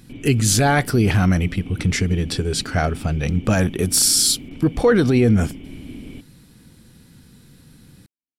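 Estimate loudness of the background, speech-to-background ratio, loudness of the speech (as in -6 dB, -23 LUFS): -37.5 LUFS, 19.0 dB, -18.5 LUFS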